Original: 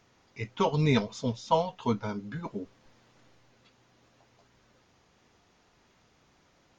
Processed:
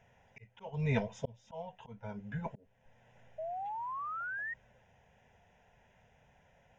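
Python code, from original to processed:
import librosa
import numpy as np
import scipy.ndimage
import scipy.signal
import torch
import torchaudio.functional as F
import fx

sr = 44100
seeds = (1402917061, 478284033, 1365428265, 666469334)

y = fx.lowpass(x, sr, hz=3000.0, slope=6)
y = fx.notch(y, sr, hz=2200.0, q=13.0)
y = fx.auto_swell(y, sr, attack_ms=569.0)
y = fx.fixed_phaser(y, sr, hz=1200.0, stages=6)
y = fx.spec_paint(y, sr, seeds[0], shape='rise', start_s=3.38, length_s=1.16, low_hz=620.0, high_hz=1900.0, level_db=-42.0)
y = y * librosa.db_to_amplitude(3.0)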